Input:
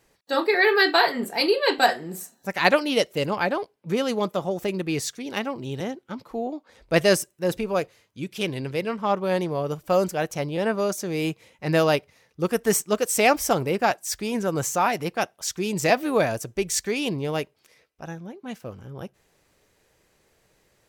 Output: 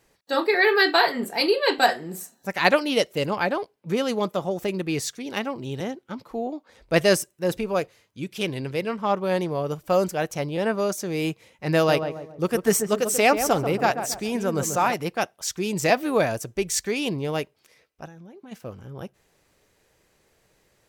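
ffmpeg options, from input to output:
-filter_complex "[0:a]asettb=1/sr,asplit=3[a][b][c];[a]atrim=end=11.754[d];[b]atrim=start=11.75:end=14.94,asetpts=PTS-STARTPTS,afade=t=in:d=0.004:c=qsin,afade=t=out:st=3.186:d=0.004:c=qsin,asplit=2[e][f];[f]adelay=137,lowpass=f=1.1k:p=1,volume=-7dB,asplit=2[g][h];[h]adelay=137,lowpass=f=1.1k:p=1,volume=0.44,asplit=2[i][j];[j]adelay=137,lowpass=f=1.1k:p=1,volume=0.44,asplit=2[k][l];[l]adelay=137,lowpass=f=1.1k:p=1,volume=0.44,asplit=2[m][n];[n]adelay=137,lowpass=f=1.1k:p=1,volume=0.44[o];[e][g][i][k][m][o]amix=inputs=6:normalize=0,atrim=end_sample=140679[p];[c]atrim=start=14.936[q];[d][p]acrossfade=d=0.004:c1=hsin:c2=qsin[r];[r][q]acrossfade=d=0.004:c1=qsin:c2=hsin,asplit=3[s][t][u];[s]afade=t=out:st=18.06:d=0.02[v];[t]acompressor=threshold=-40dB:ratio=16:attack=3.2:release=140:knee=1:detection=peak,afade=t=in:st=18.06:d=0.02,afade=t=out:st=18.51:d=0.02[w];[u]afade=t=in:st=18.51:d=0.02[x];[v][w][x]amix=inputs=3:normalize=0"

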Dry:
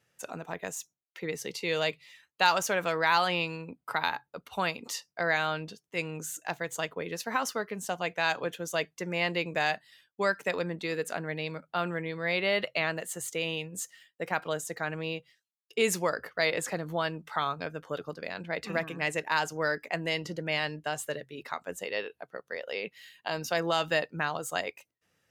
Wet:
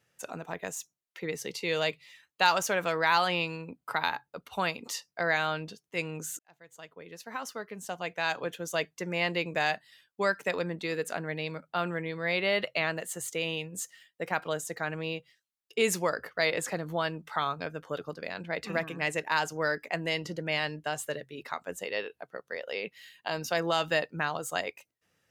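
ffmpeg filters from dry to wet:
-filter_complex "[0:a]asplit=2[a][b];[a]atrim=end=6.39,asetpts=PTS-STARTPTS,afade=t=out:st=6.386:d=0.004:c=hsin[c];[b]atrim=start=6.39,asetpts=PTS-STARTPTS,afade=t=in:d=2.4[d];[c][d]concat=n=2:v=0:a=1"

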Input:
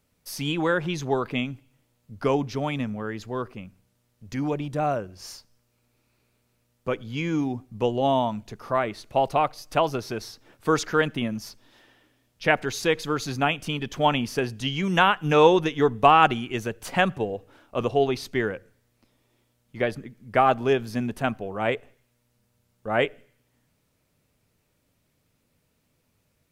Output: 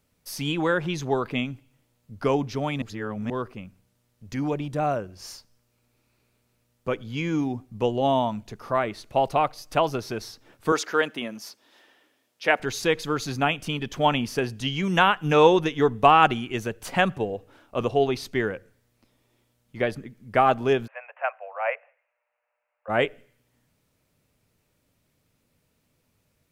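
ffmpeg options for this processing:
-filter_complex "[0:a]asettb=1/sr,asplit=3[a][b][c];[a]atrim=end=10.724[d];[b]atrim=start=10.72:end=12.6,asetpts=PTS-STARTPTS,afade=t=in:d=0.004:c=qsin,afade=t=out:st=1.876:d=0.004:c=qsin,highpass=330[e];[c]atrim=start=12.596[f];[d][e]acrossfade=d=0.004:c1=hsin:c2=qsin[g];[g][f]acrossfade=d=0.004:c1=qsin:c2=hsin,asplit=3[h][i][j];[h]afade=t=out:st=20.86:d=0.02[k];[i]asuperpass=centerf=1200:order=20:qfactor=0.55,afade=t=in:st=20.86:d=0.02,afade=t=out:st=22.88:d=0.02[l];[j]afade=t=in:st=22.88:d=0.02[m];[k][l][m]amix=inputs=3:normalize=0,asplit=3[n][o][p];[n]atrim=end=2.822[q];[o]atrim=start=2.818:end=3.302,asetpts=PTS-STARTPTS,areverse[r];[p]atrim=start=3.298[s];[q][r]acrossfade=d=0.004:c1=hsin:c2=hsin[t];[t][s]acrossfade=d=0.004:c1=hsin:c2=hsin"

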